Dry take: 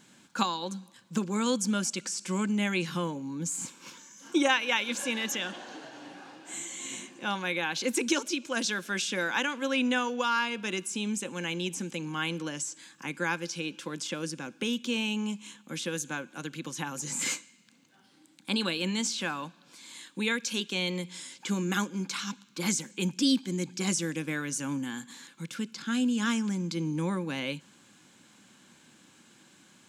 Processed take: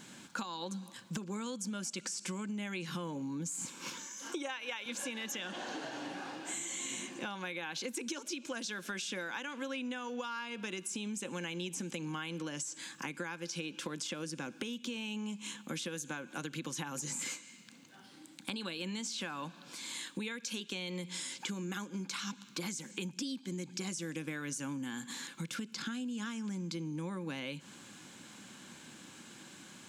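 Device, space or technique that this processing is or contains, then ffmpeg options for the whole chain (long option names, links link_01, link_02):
serial compression, peaks first: -filter_complex "[0:a]asettb=1/sr,asplit=3[link_01][link_02][link_03];[link_01]atrim=end=4.074[link_04];[link_02]atrim=start=4.07:end=4.86,asetpts=PTS-STARTPTS,afade=type=in:duration=0.004:curve=qsin,afade=type=out:start_time=0.786:duration=0.004:curve=qsin,highpass=290[link_05];[link_03]atrim=start=4.856[link_06];[link_04][link_05]acrossfade=duration=0.004:curve1=hsin:curve2=qsin[link_07];[link_07][link_06]acrossfade=duration=0.004:curve1=qsin:curve2=hsin,acompressor=threshold=-37dB:ratio=6,acompressor=threshold=-44dB:ratio=2.5,volume=5.5dB"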